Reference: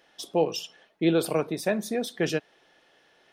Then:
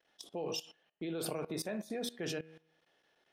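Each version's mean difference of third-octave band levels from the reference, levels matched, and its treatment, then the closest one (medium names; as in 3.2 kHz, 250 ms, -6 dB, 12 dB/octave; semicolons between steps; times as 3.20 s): 4.5 dB: gate -54 dBFS, range -9 dB; de-hum 79.75 Hz, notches 39; level held to a coarse grid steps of 18 dB; trim -1.5 dB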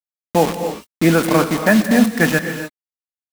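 11.0 dB: FFT filter 120 Hz 0 dB, 240 Hz +13 dB, 370 Hz -3 dB, 1.1 kHz +9 dB, 1.8 kHz +11 dB, 4.3 kHz -14 dB, 9.6 kHz -4 dB; bit crusher 5-bit; gated-style reverb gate 310 ms rising, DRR 7.5 dB; trim +6.5 dB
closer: first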